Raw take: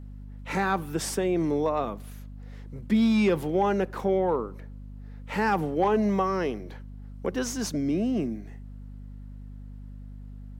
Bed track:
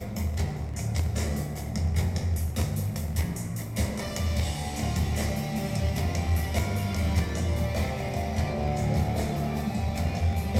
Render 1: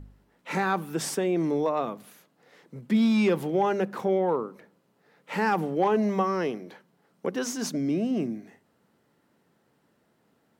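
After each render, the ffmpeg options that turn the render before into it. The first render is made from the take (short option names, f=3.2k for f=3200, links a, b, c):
-af "bandreject=f=50:t=h:w=4,bandreject=f=100:t=h:w=4,bandreject=f=150:t=h:w=4,bandreject=f=200:t=h:w=4,bandreject=f=250:t=h:w=4"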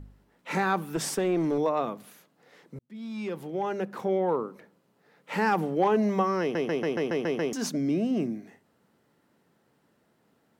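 -filter_complex "[0:a]asettb=1/sr,asplit=3[a][b][c];[a]atrim=end=0.934[d];[b]atrim=start=0.93:end=1.58,asetpts=PTS-STARTPTS,afade=t=in:d=0.004:c=qsin,afade=t=out:st=0.646:d=0.004:c=qsin,aeval=exprs='clip(val(0),-1,0.075)':c=same[e];[c]atrim=start=1.576[f];[d][e]acrossfade=d=0.004:c1=hsin:c2=qsin[g];[g][f]acrossfade=d=0.004:c1=qsin:c2=hsin,asplit=10[h][i][j][k][l][m][n][o][p][q];[h]atrim=end=2.79,asetpts=PTS-STARTPTS,afade=t=out:st=2.786:d=0.004:c=hsin[r];[i]atrim=start=2.79:end=6.552,asetpts=PTS-STARTPTS,afade=t=in:d=1.69[s];[j]atrim=start=6.408:end=6.552[t];[k]atrim=start=6.408:end=6.552[u];[l]atrim=start=6.408:end=6.552[v];[m]atrim=start=6.408:end=6.552[w];[n]atrim=start=6.408:end=6.552[x];[o]atrim=start=6.408:end=6.552[y];[p]atrim=start=6.408:end=6.552[z];[q]atrim=start=7.528[aa];[r][s]concat=n=2:v=0:a=1[ab];[ab][t]acrossfade=d=0.004:c1=hsin:c2=hsin[ac];[ac][u]acrossfade=d=0.004:c1=hsin:c2=hsin[ad];[ad][v]acrossfade=d=0.004:c1=hsin:c2=hsin[ae];[ae][w]acrossfade=d=0.004:c1=hsin:c2=hsin[af];[af][x]acrossfade=d=0.004:c1=hsin:c2=hsin[ag];[ag][y]acrossfade=d=0.004:c1=hsin:c2=hsin[ah];[ah][z]acrossfade=d=0.004:c1=hsin:c2=hsin[ai];[ai][aa]acrossfade=d=0.004:c1=hsin:c2=hsin"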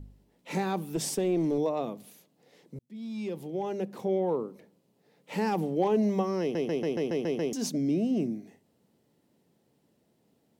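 -af "equalizer=f=1.4k:t=o:w=1.2:g=-13.5"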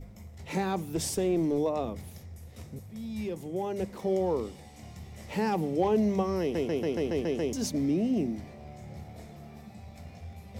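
-filter_complex "[1:a]volume=-18dB[a];[0:a][a]amix=inputs=2:normalize=0"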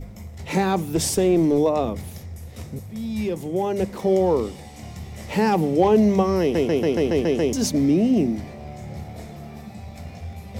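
-af "volume=9dB"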